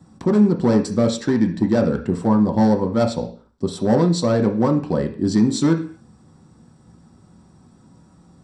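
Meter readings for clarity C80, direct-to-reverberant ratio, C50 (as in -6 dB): 16.0 dB, 2.5 dB, 11.0 dB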